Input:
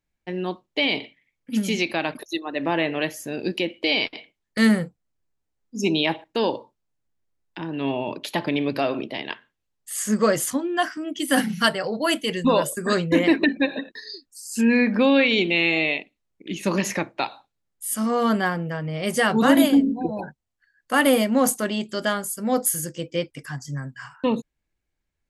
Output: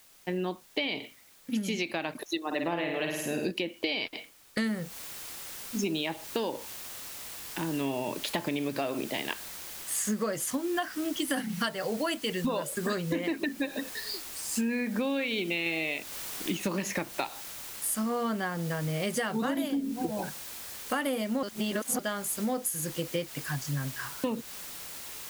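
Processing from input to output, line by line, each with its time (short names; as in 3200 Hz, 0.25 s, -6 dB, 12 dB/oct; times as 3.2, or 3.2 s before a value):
2.46–3.51 flutter echo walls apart 9 m, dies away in 0.69 s
4.67 noise floor step -58 dB -42 dB
15.66–16.57 gain +3.5 dB
21.43–21.99 reverse
whole clip: compressor 10:1, threshold -27 dBFS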